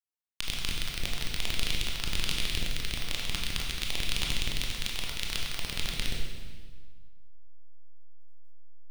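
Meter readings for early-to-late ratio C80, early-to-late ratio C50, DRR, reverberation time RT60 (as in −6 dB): 3.5 dB, 2.0 dB, −1.5 dB, 1.6 s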